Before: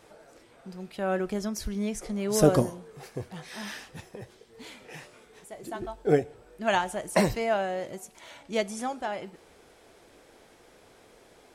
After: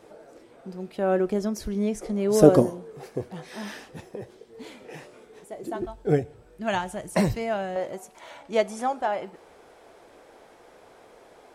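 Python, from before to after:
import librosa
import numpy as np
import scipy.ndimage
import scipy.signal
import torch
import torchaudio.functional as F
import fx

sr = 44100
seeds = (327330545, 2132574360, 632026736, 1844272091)

y = fx.peak_eq(x, sr, hz=fx.steps((0.0, 380.0), (5.85, 93.0), (7.76, 770.0)), db=9.5, octaves=2.5)
y = y * 10.0 ** (-2.5 / 20.0)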